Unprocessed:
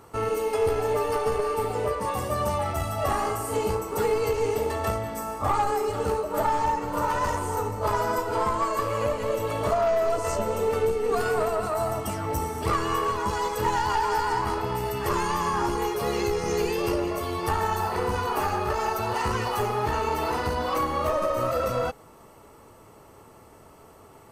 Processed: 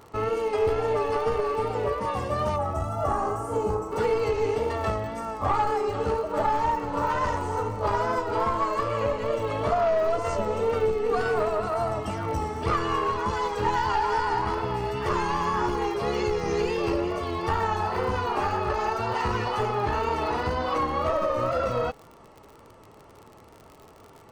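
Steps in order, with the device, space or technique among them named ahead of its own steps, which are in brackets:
lo-fi chain (low-pass filter 4,800 Hz 12 dB per octave; tape wow and flutter; surface crackle 58 per second −38 dBFS)
0:02.56–0:03.92: flat-topped bell 3,000 Hz −11.5 dB

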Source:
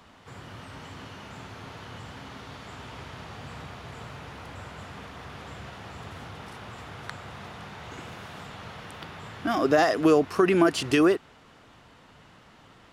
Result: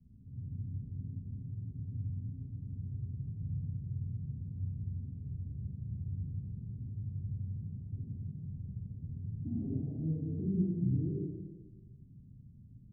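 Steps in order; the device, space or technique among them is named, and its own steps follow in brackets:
club heard from the street (brickwall limiter −15.5 dBFS, peak gain reduction 7.5 dB; low-pass filter 180 Hz 24 dB per octave; convolution reverb RT60 1.4 s, pre-delay 34 ms, DRR −5 dB)

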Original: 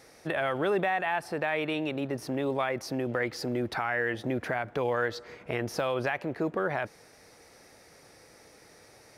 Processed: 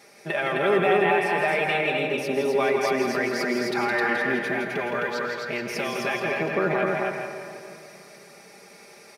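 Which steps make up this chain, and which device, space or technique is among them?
PA in a hall (high-pass filter 150 Hz 12 dB per octave; parametric band 2,400 Hz +6 dB 0.28 octaves; single-tap delay 165 ms −6 dB; convolution reverb RT60 2.9 s, pre-delay 87 ms, DRR 7 dB)
0:04.41–0:06.24: parametric band 580 Hz −4.5 dB 2.7 octaves
comb filter 5 ms, depth 78%
single-tap delay 261 ms −3 dB
level +1 dB

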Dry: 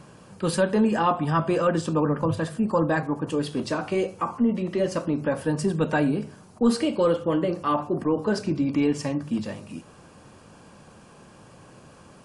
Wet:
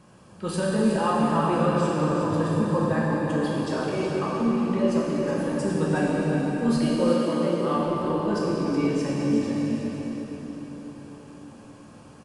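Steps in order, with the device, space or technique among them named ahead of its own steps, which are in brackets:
cave (single-tap delay 368 ms −8.5 dB; convolution reverb RT60 4.6 s, pre-delay 3 ms, DRR −5.5 dB)
0:07.09–0:07.77: high-pass filter 130 Hz
level −7.5 dB

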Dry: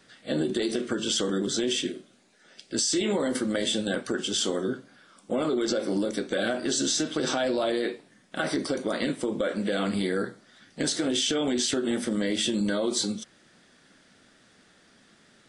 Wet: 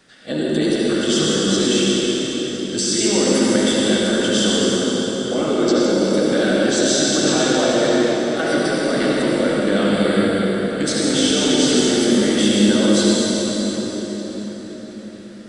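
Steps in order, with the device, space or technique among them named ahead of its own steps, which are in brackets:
cathedral (convolution reverb RT60 5.2 s, pre-delay 62 ms, DRR −6 dB)
level +3.5 dB

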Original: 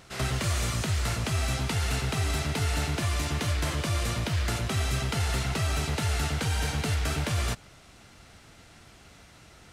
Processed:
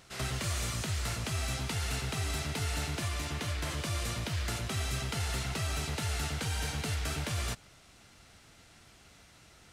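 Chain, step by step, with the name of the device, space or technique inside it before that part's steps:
0:03.08–0:03.70: bass and treble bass −1 dB, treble −3 dB
exciter from parts (in parallel at −4 dB: high-pass filter 3,000 Hz 6 dB per octave + soft clipping −29.5 dBFS, distortion −19 dB)
on the sum: level −6.5 dB

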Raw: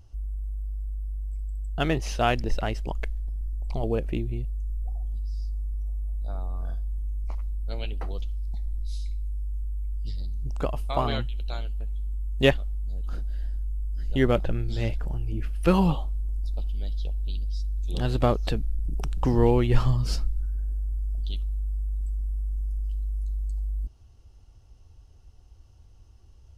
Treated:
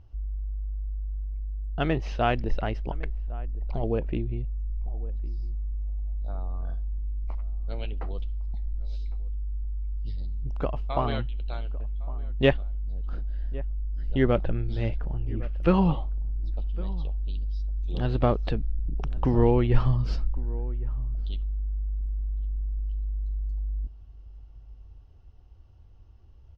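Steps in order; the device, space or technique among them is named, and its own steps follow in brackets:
shout across a valley (high-frequency loss of the air 240 metres; slap from a distant wall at 190 metres, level −19 dB)

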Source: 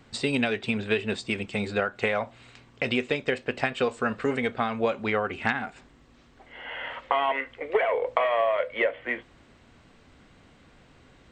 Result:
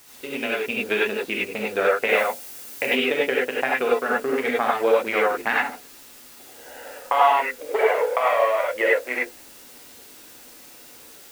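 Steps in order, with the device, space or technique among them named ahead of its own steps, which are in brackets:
adaptive Wiener filter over 41 samples
dictaphone (band-pass filter 380–3,700 Hz; automatic gain control gain up to 11 dB; tape wow and flutter; white noise bed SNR 22 dB)
0:02.09–0:02.86: high-shelf EQ 6,000 Hz +9 dB
reverb whose tail is shaped and stops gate 120 ms rising, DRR −4.5 dB
level −6 dB

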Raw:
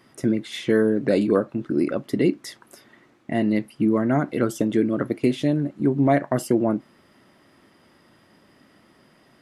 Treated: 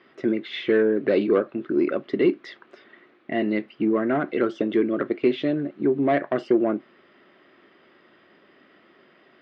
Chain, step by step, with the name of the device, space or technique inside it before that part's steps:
overdrive pedal into a guitar cabinet (mid-hump overdrive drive 13 dB, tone 3,900 Hz, clips at −6.5 dBFS; loudspeaker in its box 75–3,800 Hz, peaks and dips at 120 Hz −7 dB, 380 Hz +7 dB, 900 Hz −7 dB)
level −4 dB

